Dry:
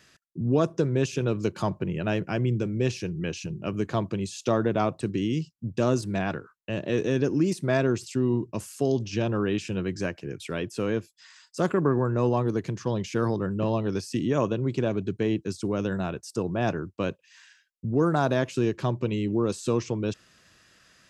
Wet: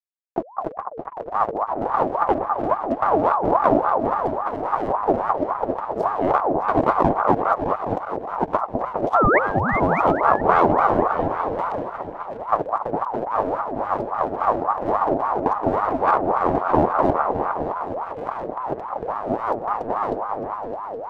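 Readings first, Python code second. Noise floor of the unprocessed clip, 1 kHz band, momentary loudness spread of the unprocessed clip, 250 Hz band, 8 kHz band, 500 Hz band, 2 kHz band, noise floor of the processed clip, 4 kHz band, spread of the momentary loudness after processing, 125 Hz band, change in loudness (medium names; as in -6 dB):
-62 dBFS, +16.5 dB, 8 LU, 0.0 dB, under -15 dB, +5.0 dB, +6.5 dB, -36 dBFS, no reading, 11 LU, -5.5 dB, +5.5 dB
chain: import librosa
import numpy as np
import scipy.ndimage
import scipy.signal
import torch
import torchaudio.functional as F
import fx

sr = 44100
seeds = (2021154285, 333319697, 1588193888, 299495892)

p1 = fx.tilt_eq(x, sr, slope=-4.5)
p2 = fx.over_compress(p1, sr, threshold_db=-21.0, ratio=-0.5)
p3 = fx.small_body(p2, sr, hz=(210.0, 350.0, 520.0), ring_ms=40, db=9)
p4 = fx.backlash(p3, sr, play_db=-13.0)
p5 = fx.spec_paint(p4, sr, seeds[0], shape='rise', start_s=9.14, length_s=0.25, low_hz=270.0, high_hz=1500.0, level_db=-12.0)
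p6 = p5 + fx.echo_opening(p5, sr, ms=205, hz=400, octaves=2, feedback_pct=70, wet_db=-3, dry=0)
p7 = fx.ring_lfo(p6, sr, carrier_hz=740.0, swing_pct=40, hz=3.6)
y = p7 * 10.0 ** (-1.0 / 20.0)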